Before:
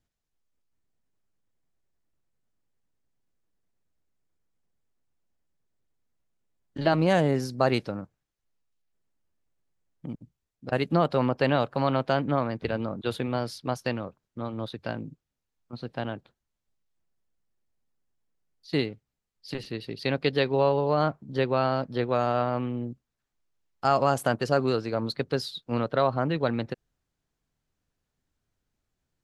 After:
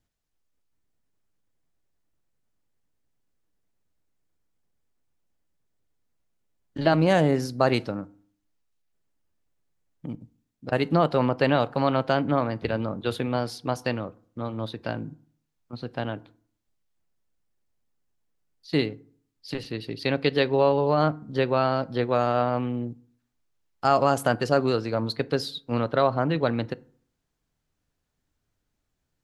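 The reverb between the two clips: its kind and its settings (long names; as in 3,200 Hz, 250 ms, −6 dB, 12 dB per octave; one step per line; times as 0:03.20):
feedback delay network reverb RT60 0.51 s, low-frequency decay 1.2×, high-frequency decay 0.55×, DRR 17 dB
level +2 dB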